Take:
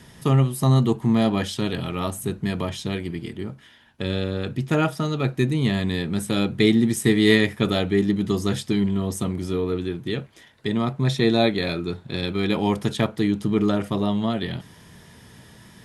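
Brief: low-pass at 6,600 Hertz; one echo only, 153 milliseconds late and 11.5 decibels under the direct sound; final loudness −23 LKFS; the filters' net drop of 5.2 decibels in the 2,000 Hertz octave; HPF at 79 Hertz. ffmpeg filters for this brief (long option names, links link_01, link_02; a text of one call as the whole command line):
ffmpeg -i in.wav -af "highpass=79,lowpass=6600,equalizer=frequency=2000:width_type=o:gain=-6,aecho=1:1:153:0.266,volume=0.5dB" out.wav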